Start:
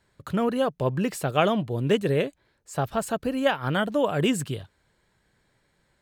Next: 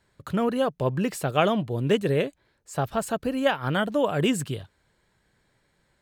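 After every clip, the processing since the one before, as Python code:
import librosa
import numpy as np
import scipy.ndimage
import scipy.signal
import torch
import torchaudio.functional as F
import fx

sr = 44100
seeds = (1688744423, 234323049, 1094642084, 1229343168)

y = x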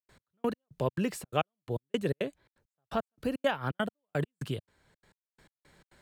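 y = fx.step_gate(x, sr, bpm=170, pattern='.x...x..xx.xxx', floor_db=-60.0, edge_ms=4.5)
y = fx.band_squash(y, sr, depth_pct=40)
y = y * librosa.db_to_amplitude(-4.5)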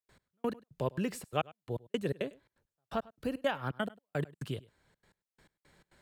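y = x + 10.0 ** (-22.0 / 20.0) * np.pad(x, (int(101 * sr / 1000.0), 0))[:len(x)]
y = y * librosa.db_to_amplitude(-3.0)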